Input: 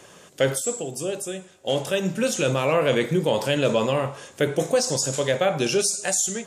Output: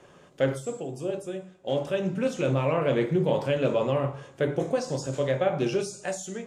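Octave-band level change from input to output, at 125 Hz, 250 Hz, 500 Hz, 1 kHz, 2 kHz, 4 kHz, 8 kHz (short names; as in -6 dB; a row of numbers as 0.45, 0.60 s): -1.0, -2.5, -3.5, -4.5, -7.5, -11.5, -17.0 dB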